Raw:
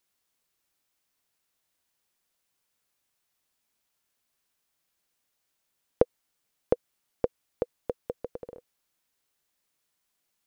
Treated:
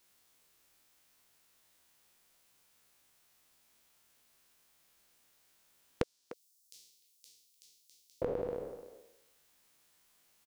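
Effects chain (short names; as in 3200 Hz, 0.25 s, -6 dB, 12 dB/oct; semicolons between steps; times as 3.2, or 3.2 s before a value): spectral trails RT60 0.86 s; 6.03–8.22 inverse Chebyshev high-pass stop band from 1500 Hz, stop band 60 dB; compressor 12:1, threshold -37 dBFS, peak gain reduction 23 dB; speakerphone echo 0.3 s, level -13 dB; gain +6.5 dB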